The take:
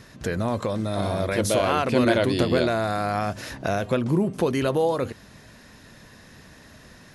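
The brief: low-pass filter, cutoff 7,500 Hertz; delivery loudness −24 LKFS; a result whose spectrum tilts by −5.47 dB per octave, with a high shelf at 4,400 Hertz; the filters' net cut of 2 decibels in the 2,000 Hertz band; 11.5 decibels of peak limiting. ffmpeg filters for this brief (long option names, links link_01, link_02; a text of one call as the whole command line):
ffmpeg -i in.wav -af "lowpass=7500,equalizer=frequency=2000:width_type=o:gain=-4.5,highshelf=frequency=4400:gain=8.5,volume=4dB,alimiter=limit=-14.5dB:level=0:latency=1" out.wav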